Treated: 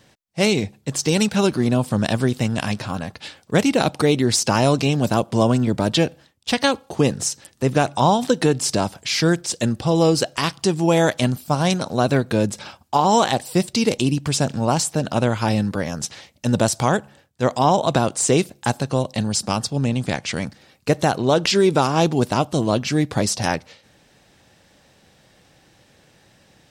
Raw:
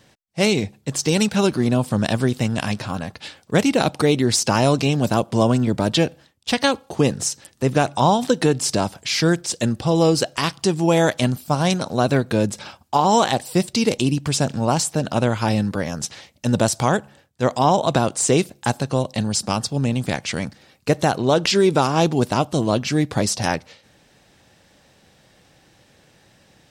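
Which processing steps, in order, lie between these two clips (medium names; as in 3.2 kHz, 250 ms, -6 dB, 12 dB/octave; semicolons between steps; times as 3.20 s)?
19.70–20.36 s: low-pass 9.9 kHz 12 dB/octave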